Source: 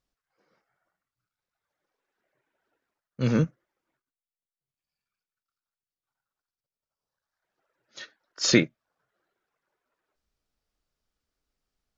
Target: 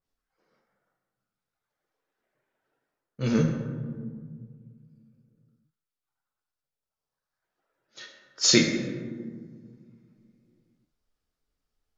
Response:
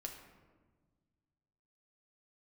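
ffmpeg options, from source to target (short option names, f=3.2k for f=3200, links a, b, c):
-filter_complex "[1:a]atrim=start_sample=2205,asetrate=31311,aresample=44100[a];[0:a][a]afir=irnorm=-1:irlink=0,adynamicequalizer=threshold=0.00562:dfrequency=3000:dqfactor=0.7:tfrequency=3000:tqfactor=0.7:attack=5:release=100:ratio=0.375:range=4:mode=boostabove:tftype=highshelf"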